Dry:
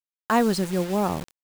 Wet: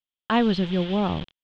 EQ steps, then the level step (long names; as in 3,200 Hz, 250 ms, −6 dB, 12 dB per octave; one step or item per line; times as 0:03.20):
transistor ladder low-pass 3,500 Hz, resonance 75%
low-shelf EQ 230 Hz +9.5 dB
+8.5 dB